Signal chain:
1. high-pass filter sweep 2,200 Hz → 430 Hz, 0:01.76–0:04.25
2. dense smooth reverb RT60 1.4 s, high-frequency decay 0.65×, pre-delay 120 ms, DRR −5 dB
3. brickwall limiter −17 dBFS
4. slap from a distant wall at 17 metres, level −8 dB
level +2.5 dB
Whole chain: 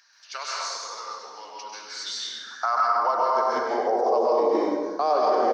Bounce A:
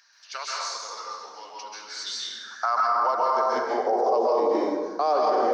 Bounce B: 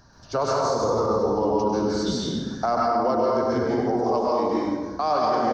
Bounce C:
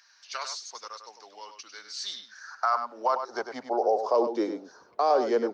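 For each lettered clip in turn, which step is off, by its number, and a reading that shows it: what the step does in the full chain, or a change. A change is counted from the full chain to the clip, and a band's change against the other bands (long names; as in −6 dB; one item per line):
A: 4, change in crest factor −2.5 dB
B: 1, 250 Hz band +10.0 dB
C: 2, change in momentary loudness spread +3 LU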